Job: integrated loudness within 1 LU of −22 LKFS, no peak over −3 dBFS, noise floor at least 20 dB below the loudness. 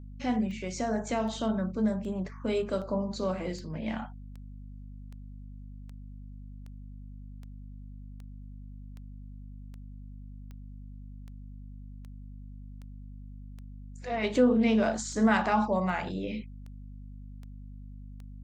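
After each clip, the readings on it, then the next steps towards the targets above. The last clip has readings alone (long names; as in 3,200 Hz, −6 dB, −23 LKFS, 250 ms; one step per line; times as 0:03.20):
number of clicks 24; mains hum 50 Hz; hum harmonics up to 250 Hz; level of the hum −42 dBFS; integrated loudness −29.5 LKFS; sample peak −12.0 dBFS; target loudness −22.0 LKFS
→ click removal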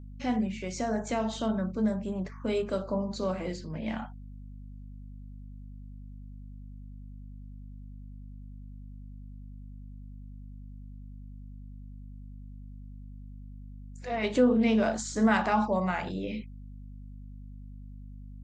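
number of clicks 0; mains hum 50 Hz; hum harmonics up to 250 Hz; level of the hum −42 dBFS
→ mains-hum notches 50/100/150/200/250 Hz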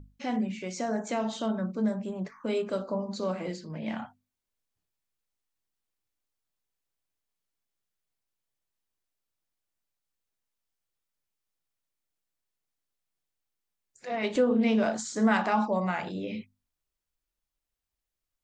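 mains hum none found; integrated loudness −30.0 LKFS; sample peak −12.0 dBFS; target loudness −22.0 LKFS
→ level +8 dB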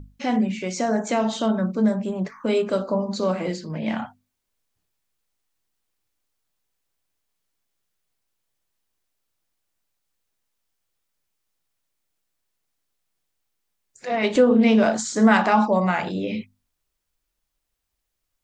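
integrated loudness −22.0 LKFS; sample peak −4.0 dBFS; background noise floor −79 dBFS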